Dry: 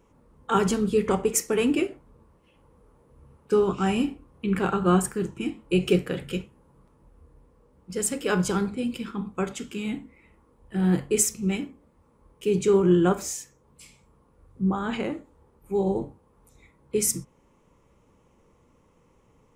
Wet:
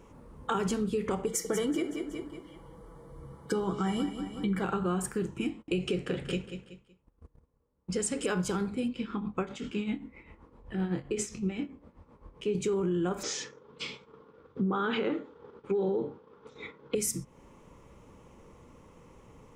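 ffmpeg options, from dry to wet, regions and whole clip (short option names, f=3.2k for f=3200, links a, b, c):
-filter_complex "[0:a]asettb=1/sr,asplit=3[a][b][c];[a]atrim=end=1.264[d];[b]atrim=start=1.26:end=4.64,asetpts=PTS-STARTPTS,afade=t=in:d=0.004:c=qsin,afade=t=out:st=3.376:d=0.004:c=qsin,asuperstop=centerf=2600:order=20:qfactor=5.6,aecho=1:1:6.1:0.52,atrim=end_sample=149058,aecho=1:1:186|372|558|744:0.237|0.0877|0.0325|0.012,atrim=end_sample=149058[e];[c]atrim=start=4.636[f];[d][e]acrossfade=d=0.004:c1=hsin:c2=qsin[g];[g][f]acrossfade=d=0.004:c1=qsin:c2=hsin,asettb=1/sr,asplit=3[h][i][j];[h]atrim=end=5.494[k];[i]atrim=start=5.49:end=8.26,asetpts=PTS-STARTPTS,afade=t=in:d=0.004:c=qsin,afade=t=out:st=2.766:d=0.004:c=qsin,lowpass=f=9.3k:w=0.5412,lowpass=f=9.3k:w=1.3066,agate=range=-25dB:threshold=-51dB:ratio=16:release=100:detection=peak,aecho=1:1:187|374|561:0.188|0.0452|0.0108,atrim=end_sample=122157[l];[j]atrim=start=8.256[m];[k][l]acrossfade=d=0.004:c1=hsin:c2=qsin[n];[n][m]acrossfade=d=0.004:c1=qsin:c2=hsin,asettb=1/sr,asplit=3[o][p][q];[o]atrim=end=8.884[r];[p]atrim=start=8.88:end=12.55,asetpts=PTS-STARTPTS,afade=t=in:d=0.004:c=qsin,afade=t=out:st=3.666:d=0.004:c=qsin,lowpass=4.8k,tremolo=f=7.7:d=0.69,asplit=2[s][t];[t]adelay=24,volume=-10dB[u];[s][u]amix=inputs=2:normalize=0,atrim=end_sample=161847[v];[q]atrim=start=12.546[w];[r][v]acrossfade=d=0.004:c1=hsin:c2=qsin[x];[x][w]acrossfade=d=0.004:c1=qsin:c2=hsin,asettb=1/sr,asplit=3[y][z][aa];[y]atrim=end=13.234[ab];[z]atrim=start=13.23:end=16.95,asetpts=PTS-STARTPTS,afade=t=in:d=0.004:c=qsin,afade=t=out:st=3.716:d=0.004:c=qsin,acontrast=87,highpass=180,equalizer=f=440:t=q:w=4:g=9,equalizer=f=670:t=q:w=4:g=-5,equalizer=f=1.4k:t=q:w=4:g=8,equalizer=f=3.4k:t=q:w=4:g=7,lowpass=f=5k:w=0.5412,lowpass=f=5k:w=1.3066,agate=range=-33dB:threshold=-47dB:ratio=3:release=100:detection=peak[ac];[aa]atrim=start=16.946[ad];[ab][ac]acrossfade=d=0.004:c1=hsin:c2=qsin[ae];[ae][ad]acrossfade=d=0.004:c1=qsin:c2=hsin,highshelf=f=12k:g=-5.5,alimiter=limit=-15.5dB:level=0:latency=1:release=39,acompressor=threshold=-39dB:ratio=3,volume=7dB"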